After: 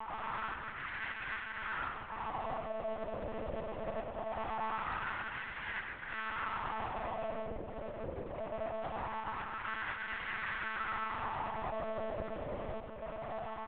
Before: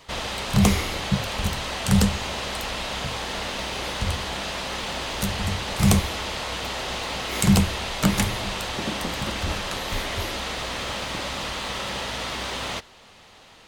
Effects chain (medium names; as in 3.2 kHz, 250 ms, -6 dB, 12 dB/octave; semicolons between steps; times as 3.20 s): comb filter that takes the minimum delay 3.1 ms; low-pass 2.9 kHz 24 dB/octave; bass shelf 190 Hz +9 dB; level rider gain up to 6 dB; peak limiter -15 dBFS, peak gain reduction 13 dB; compression 4:1, threshold -40 dBFS, peak gain reduction 17.5 dB; valve stage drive 45 dB, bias 0.55; wah-wah 0.22 Hz 490–1700 Hz, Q 3; multi-tap echo 101/114/170/352/388 ms -7/-14.5/-13/-16.5/-15.5 dB; monotone LPC vocoder at 8 kHz 220 Hz; trim +17.5 dB